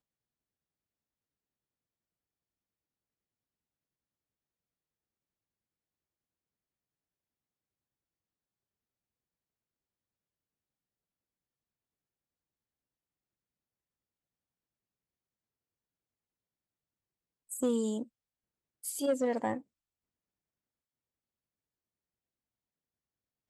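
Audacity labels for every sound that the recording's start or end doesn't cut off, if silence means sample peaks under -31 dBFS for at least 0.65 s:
17.520000	18.020000	sound
18.860000	19.550000	sound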